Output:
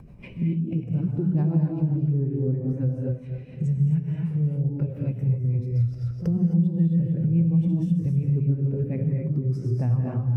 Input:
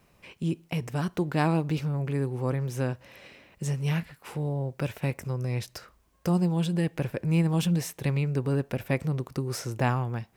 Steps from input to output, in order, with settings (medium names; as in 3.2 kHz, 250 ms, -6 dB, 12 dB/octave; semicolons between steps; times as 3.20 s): backward echo that repeats 130 ms, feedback 51%, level -7 dB; bass shelf 410 Hz +10.5 dB; pre-echo 53 ms -22.5 dB; upward compressor, threshold -18 dBFS; rotary cabinet horn 7 Hz; gated-style reverb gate 290 ms rising, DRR 0 dB; compression 3:1, threshold -20 dBFS, peak gain reduction 9 dB; spectral contrast expander 1.5:1